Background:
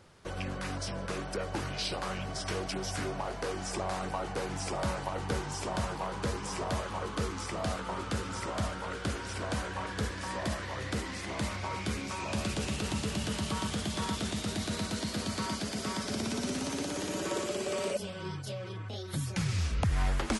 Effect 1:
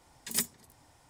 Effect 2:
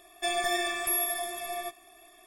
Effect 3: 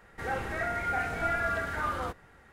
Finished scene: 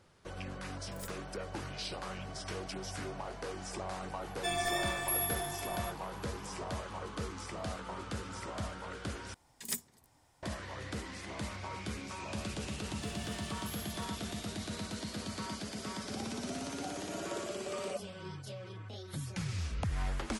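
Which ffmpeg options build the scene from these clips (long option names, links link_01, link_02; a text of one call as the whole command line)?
ffmpeg -i bed.wav -i cue0.wav -i cue1.wav -i cue2.wav -filter_complex "[1:a]asplit=2[link_01][link_02];[2:a]asplit=2[link_03][link_04];[0:a]volume=-6dB[link_05];[link_01]aeval=exprs='(tanh(17.8*val(0)+0.7)-tanh(0.7))/17.8':channel_layout=same[link_06];[link_04]asoftclip=type=hard:threshold=-28dB[link_07];[3:a]asplit=3[link_08][link_09][link_10];[link_08]bandpass=frequency=730:width_type=q:width=8,volume=0dB[link_11];[link_09]bandpass=frequency=1090:width_type=q:width=8,volume=-6dB[link_12];[link_10]bandpass=frequency=2440:width_type=q:width=8,volume=-9dB[link_13];[link_11][link_12][link_13]amix=inputs=3:normalize=0[link_14];[link_05]asplit=2[link_15][link_16];[link_15]atrim=end=9.344[link_17];[link_02]atrim=end=1.09,asetpts=PTS-STARTPTS,volume=-6.5dB[link_18];[link_16]atrim=start=10.426[link_19];[link_06]atrim=end=1.09,asetpts=PTS-STARTPTS,volume=-13.5dB,afade=type=in:duration=0.004:curve=hsin,afade=type=out:start_time=1.086:duration=0.004:curve=hsin,adelay=650[link_20];[link_03]atrim=end=2.26,asetpts=PTS-STARTPTS,volume=-5dB,afade=type=in:duration=0.004:curve=hsin,afade=type=out:start_time=2.256:duration=0.004:curve=hsin,adelay=185661S[link_21];[link_07]atrim=end=2.26,asetpts=PTS-STARTPTS,volume=-17.5dB,afade=type=in:duration=0.004:curve=hsin,afade=type=out:start_time=2.256:duration=0.004:curve=hsin,adelay=12790[link_22];[link_14]atrim=end=2.52,asetpts=PTS-STARTPTS,volume=-8.5dB,afade=type=in:duration=0.004:curve=hsin,afade=type=out:start_time=2.516:duration=0.004:curve=hsin,adelay=15890[link_23];[link_17][link_18]acrossfade=duration=0.004:curve1=hsin:curve2=hsin[link_24];[link_24][link_19]acrossfade=duration=0.004:curve1=hsin:curve2=hsin[link_25];[link_25][link_20][link_21][link_22][link_23]amix=inputs=5:normalize=0" out.wav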